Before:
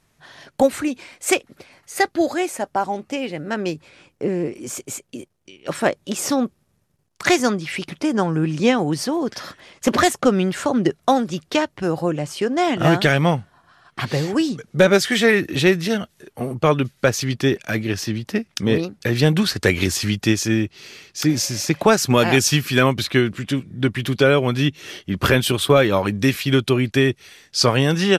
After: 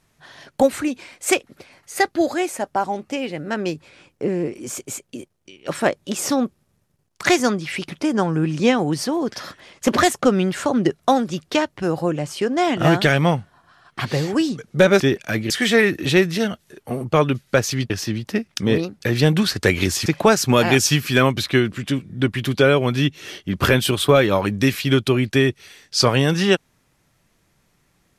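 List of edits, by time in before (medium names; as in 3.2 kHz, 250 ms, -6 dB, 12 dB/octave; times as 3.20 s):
17.40–17.90 s: move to 15.00 s
20.06–21.67 s: delete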